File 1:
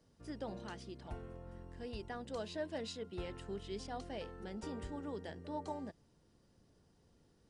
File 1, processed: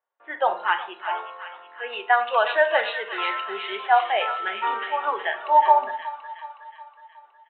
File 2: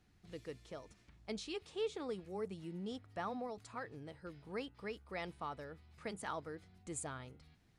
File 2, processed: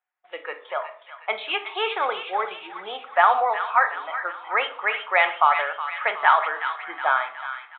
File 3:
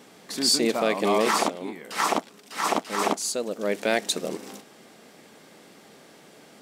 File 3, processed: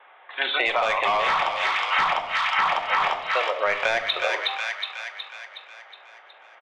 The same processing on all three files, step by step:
downsampling 8000 Hz; gate with hold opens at -58 dBFS; HPF 760 Hz 24 dB/oct; low-pass opened by the level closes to 1800 Hz, open at -27.5 dBFS; in parallel at -0.5 dB: limiter -20 dBFS; on the sum: spectral noise reduction 13 dB; overloaded stage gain 19 dB; air absorption 90 m; on a send: thin delay 0.367 s, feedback 53%, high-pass 1500 Hz, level -7 dB; on the sum: shoebox room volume 670 m³, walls furnished, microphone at 1 m; compressor 12:1, threshold -33 dBFS; match loudness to -23 LUFS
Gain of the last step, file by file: +25.0, +23.0, +14.0 dB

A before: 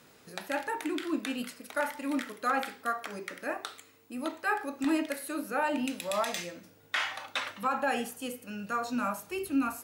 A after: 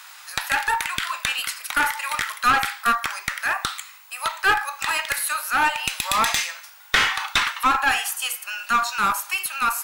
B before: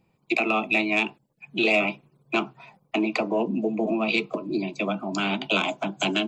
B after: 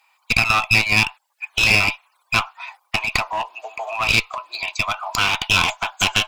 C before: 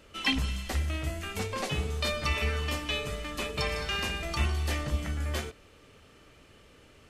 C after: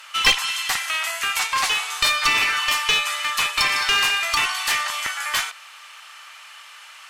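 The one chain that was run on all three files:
steep high-pass 880 Hz 36 dB/oct; in parallel at -3 dB: compressor, threshold -40 dBFS; on the sum: one-sided clip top -31.5 dBFS; normalise peaks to -2 dBFS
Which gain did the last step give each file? +13.0, +11.0, +13.5 dB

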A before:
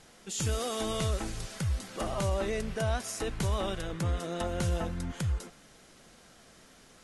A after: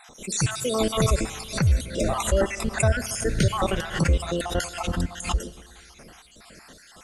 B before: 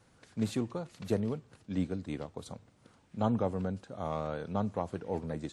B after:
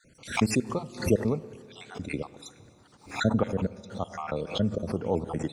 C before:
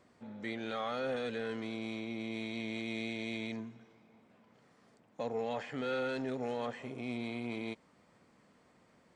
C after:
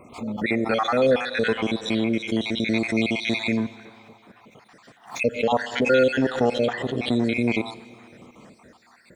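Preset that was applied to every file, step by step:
random spectral dropouts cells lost 55%; Schroeder reverb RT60 2.4 s, combs from 25 ms, DRR 15.5 dB; backwards sustainer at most 150 dB/s; normalise peaks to -9 dBFS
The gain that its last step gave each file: +11.0, +7.5, +18.0 dB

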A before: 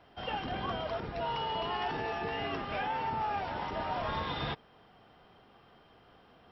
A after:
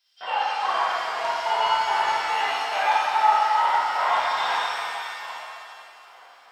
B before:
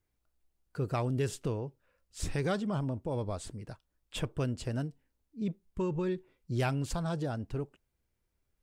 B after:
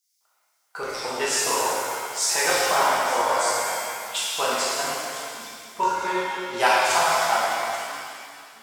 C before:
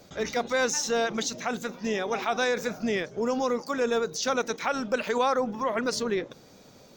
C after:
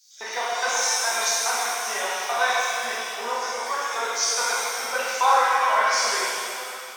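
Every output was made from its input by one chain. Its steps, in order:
reverse delay 0.666 s, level -13.5 dB; LFO high-pass square 2.4 Hz 870–5400 Hz; shimmer reverb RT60 2.2 s, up +7 st, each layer -8 dB, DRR -8.5 dB; match loudness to -23 LUFS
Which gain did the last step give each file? +1.5, +9.0, -4.0 dB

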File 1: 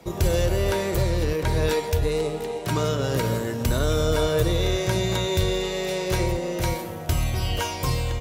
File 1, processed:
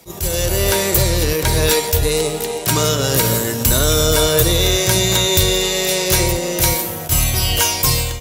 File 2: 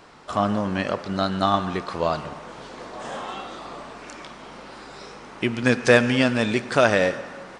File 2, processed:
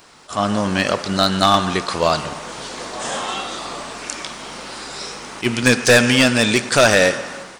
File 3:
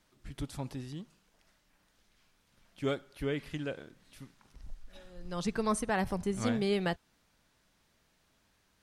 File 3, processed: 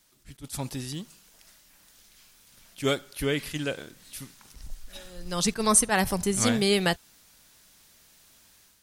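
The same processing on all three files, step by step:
pre-emphasis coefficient 0.8; AGC gain up to 7.5 dB; overloaded stage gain 18 dB; attack slew limiter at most 330 dB/s; normalise peaks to -6 dBFS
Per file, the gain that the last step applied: +12.0, +12.0, +12.0 dB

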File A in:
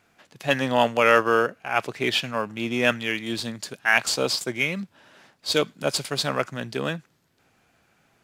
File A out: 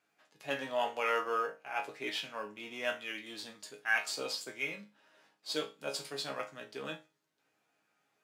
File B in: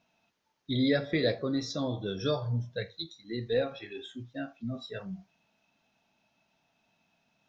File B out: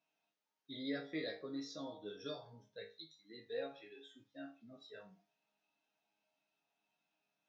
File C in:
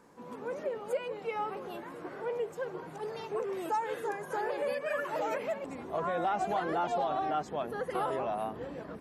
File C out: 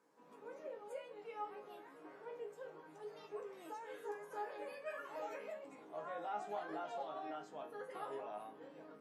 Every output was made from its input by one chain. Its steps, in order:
HPF 250 Hz 12 dB/oct; resonator bank G#2 sus4, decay 0.28 s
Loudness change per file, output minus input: -12.5, -14.0, -13.0 LU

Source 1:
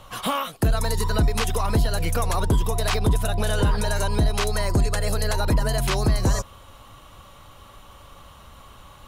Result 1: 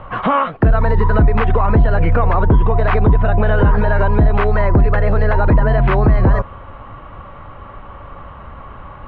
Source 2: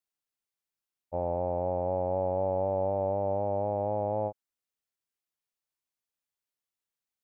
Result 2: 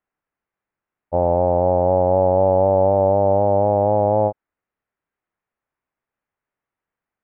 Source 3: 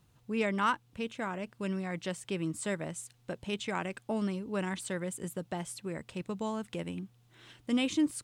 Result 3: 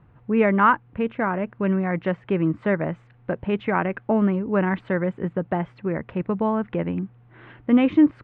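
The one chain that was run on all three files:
LPF 2000 Hz 24 dB/oct; limiter -18.5 dBFS; normalise peaks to -6 dBFS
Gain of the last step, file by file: +12.5, +13.0, +12.5 dB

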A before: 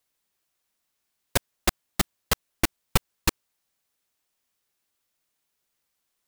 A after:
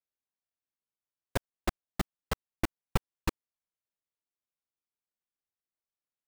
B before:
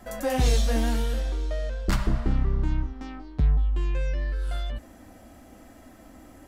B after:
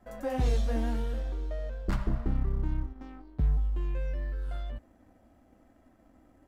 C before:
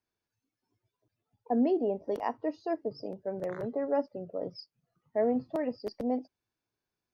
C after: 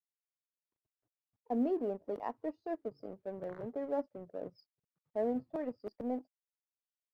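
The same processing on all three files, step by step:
G.711 law mismatch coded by A; high shelf 2500 Hz -12 dB; gain -4.5 dB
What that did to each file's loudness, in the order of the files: -9.0, -5.5, -6.0 LU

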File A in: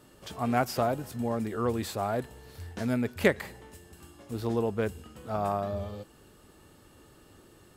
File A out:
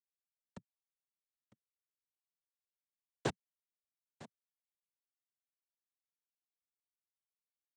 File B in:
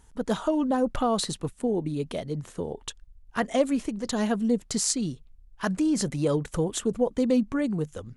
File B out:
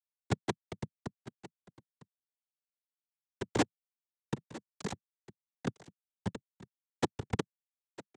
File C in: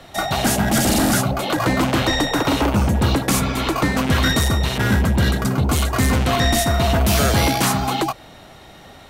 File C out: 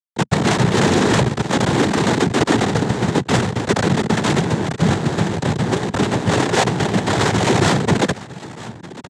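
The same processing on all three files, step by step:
Schmitt trigger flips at -16 dBFS; echo 0.954 s -17.5 dB; noise vocoder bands 6; gain +4.5 dB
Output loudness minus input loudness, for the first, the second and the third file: -10.5, -11.5, +0.5 LU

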